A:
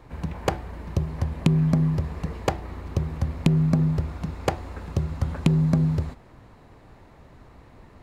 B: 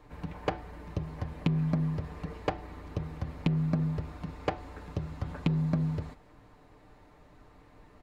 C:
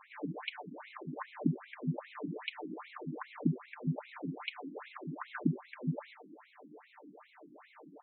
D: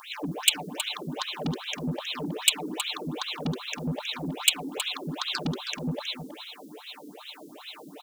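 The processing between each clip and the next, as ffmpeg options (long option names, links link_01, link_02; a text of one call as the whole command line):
ffmpeg -i in.wav -filter_complex "[0:a]acrossover=split=4700[link_01][link_02];[link_02]acompressor=threshold=-60dB:ratio=4:attack=1:release=60[link_03];[link_01][link_03]amix=inputs=2:normalize=0,equalizer=frequency=140:width_type=o:width=0.39:gain=-8.5,aecho=1:1:6.7:0.47,volume=-6.5dB" out.wav
ffmpeg -i in.wav -af "acompressor=threshold=-33dB:ratio=3,afftfilt=real='re*between(b*sr/1024,230*pow(3000/230,0.5+0.5*sin(2*PI*2.5*pts/sr))/1.41,230*pow(3000/230,0.5+0.5*sin(2*PI*2.5*pts/sr))*1.41)':imag='im*between(b*sr/1024,230*pow(3000/230,0.5+0.5*sin(2*PI*2.5*pts/sr))/1.41,230*pow(3000/230,0.5+0.5*sin(2*PI*2.5*pts/sr))*1.41)':win_size=1024:overlap=0.75,volume=10dB" out.wav
ffmpeg -i in.wav -af "asoftclip=type=tanh:threshold=-34dB,aexciter=amount=12.2:drive=7:freq=3000,aecho=1:1:319:0.282,volume=9dB" out.wav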